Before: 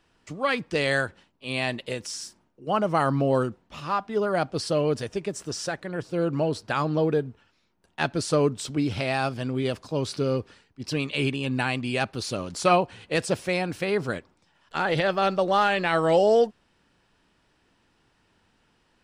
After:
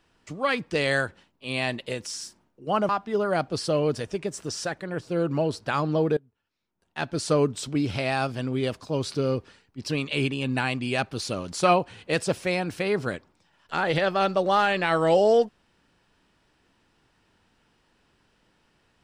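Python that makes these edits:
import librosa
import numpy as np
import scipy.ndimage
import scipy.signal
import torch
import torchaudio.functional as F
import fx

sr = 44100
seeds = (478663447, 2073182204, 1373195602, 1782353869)

y = fx.edit(x, sr, fx.cut(start_s=2.89, length_s=1.02),
    fx.fade_in_from(start_s=7.19, length_s=1.09, curve='qua', floor_db=-23.5), tone=tone)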